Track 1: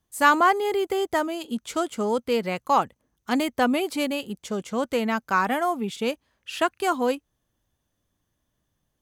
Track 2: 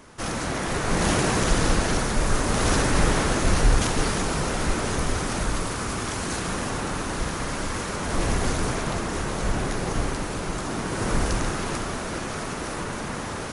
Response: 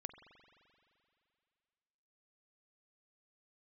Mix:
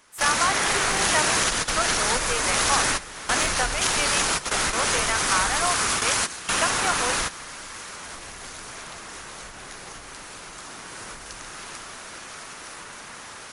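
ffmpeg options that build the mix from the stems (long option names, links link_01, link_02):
-filter_complex "[0:a]acrossover=split=450 2700:gain=0.126 1 0.2[link_01][link_02][link_03];[link_01][link_02][link_03]amix=inputs=3:normalize=0,alimiter=limit=-16.5dB:level=0:latency=1:release=336,volume=-1.5dB,asplit=2[link_04][link_05];[1:a]acompressor=threshold=-23dB:ratio=6,volume=2.5dB[link_06];[link_05]apad=whole_len=596565[link_07];[link_06][link_07]sidechaingate=range=-14dB:threshold=-48dB:ratio=16:detection=peak[link_08];[link_04][link_08]amix=inputs=2:normalize=0,tiltshelf=frequency=690:gain=-9"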